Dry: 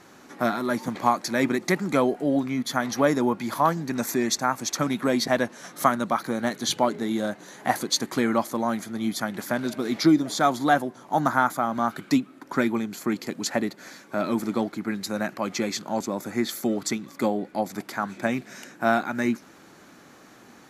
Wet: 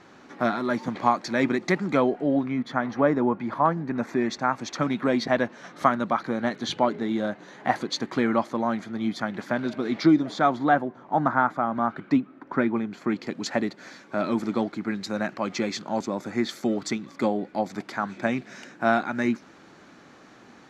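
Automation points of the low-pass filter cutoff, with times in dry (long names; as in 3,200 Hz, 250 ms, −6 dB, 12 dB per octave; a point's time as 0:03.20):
0:01.74 4,500 Hz
0:02.94 1,800 Hz
0:03.95 1,800 Hz
0:04.54 3,500 Hz
0:10.18 3,500 Hz
0:10.83 2,000 Hz
0:12.72 2,000 Hz
0:13.52 5,200 Hz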